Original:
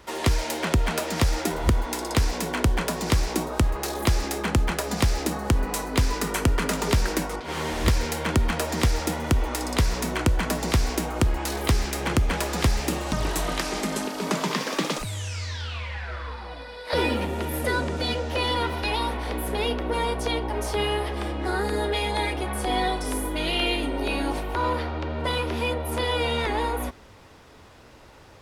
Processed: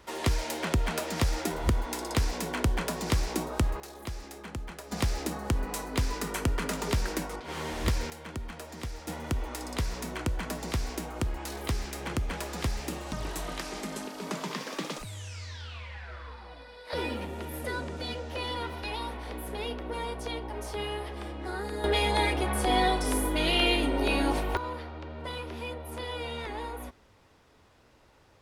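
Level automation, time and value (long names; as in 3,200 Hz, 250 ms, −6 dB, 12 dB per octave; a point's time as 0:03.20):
−5 dB
from 0:03.80 −16 dB
from 0:04.92 −6.5 dB
from 0:08.10 −16 dB
from 0:09.08 −9 dB
from 0:21.84 0 dB
from 0:24.57 −11 dB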